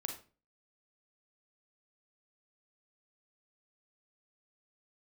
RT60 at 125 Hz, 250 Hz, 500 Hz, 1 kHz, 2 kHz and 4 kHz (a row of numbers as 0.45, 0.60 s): 0.50, 0.45, 0.40, 0.35, 0.30, 0.30 s